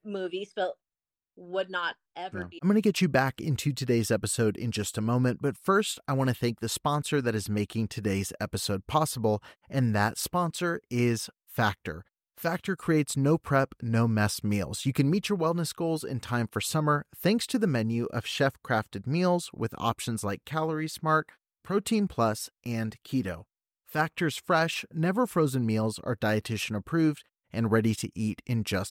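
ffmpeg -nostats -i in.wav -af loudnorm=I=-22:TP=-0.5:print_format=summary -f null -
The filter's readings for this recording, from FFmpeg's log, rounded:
Input Integrated:    -28.8 LUFS
Input True Peak:     -11.0 dBTP
Input LRA:             2.6 LU
Input Threshold:     -39.0 LUFS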